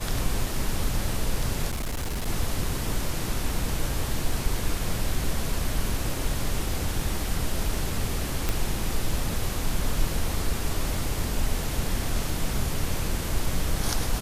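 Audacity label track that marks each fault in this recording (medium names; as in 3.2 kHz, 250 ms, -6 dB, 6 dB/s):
1.700000	2.280000	clipped -25.5 dBFS
8.490000	8.490000	pop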